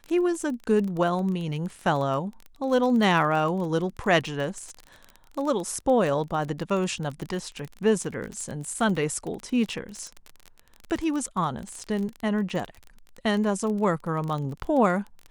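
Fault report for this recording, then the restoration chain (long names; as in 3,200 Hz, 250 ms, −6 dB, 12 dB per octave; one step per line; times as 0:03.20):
surface crackle 25 per second −30 dBFS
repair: click removal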